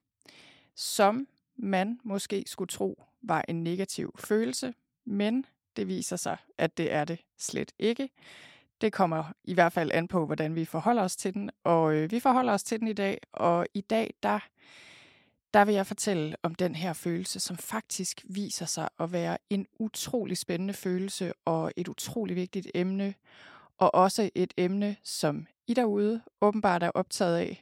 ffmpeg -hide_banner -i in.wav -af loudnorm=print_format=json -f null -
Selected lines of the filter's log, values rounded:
"input_i" : "-29.6",
"input_tp" : "-8.4",
"input_lra" : "4.5",
"input_thresh" : "-40.0",